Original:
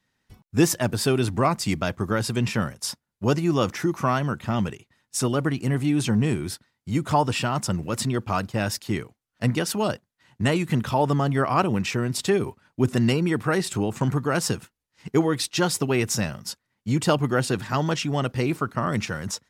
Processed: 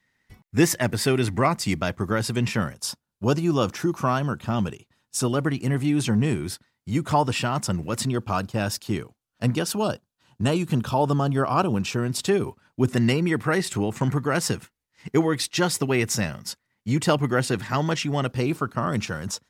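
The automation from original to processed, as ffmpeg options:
ffmpeg -i in.wav -af "asetnsamples=nb_out_samples=441:pad=0,asendcmd='1.46 equalizer g 2.5;2.76 equalizer g -7.5;5.28 equalizer g 0.5;8.06 equalizer g -6.5;9.77 equalizer g -13;11.96 equalizer g -3;12.89 equalizer g 4.5;18.29 equalizer g -4.5',equalizer=frequency=2000:width_type=o:width=0.31:gain=10.5" out.wav

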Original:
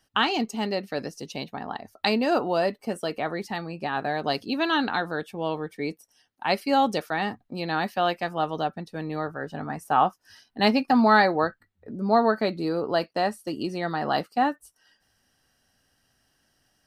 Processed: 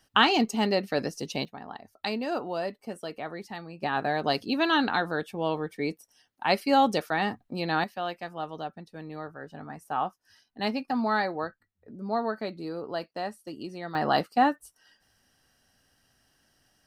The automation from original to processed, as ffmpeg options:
ffmpeg -i in.wav -af "asetnsamples=nb_out_samples=441:pad=0,asendcmd='1.45 volume volume -7.5dB;3.83 volume volume 0dB;7.84 volume volume -8.5dB;13.95 volume volume 1dB',volume=2.5dB" out.wav

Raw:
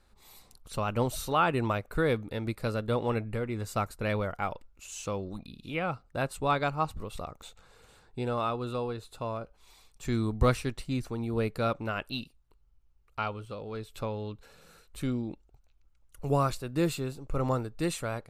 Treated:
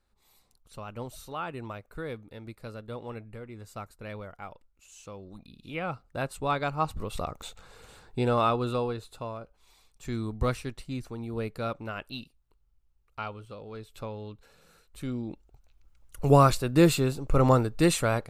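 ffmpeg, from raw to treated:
ffmpeg -i in.wav -af "volume=17.5dB,afade=type=in:start_time=5.17:duration=0.74:silence=0.354813,afade=type=in:start_time=6.65:duration=0.63:silence=0.446684,afade=type=out:start_time=8.51:duration=0.83:silence=0.334965,afade=type=in:start_time=15.05:duration=1.25:silence=0.266073" out.wav

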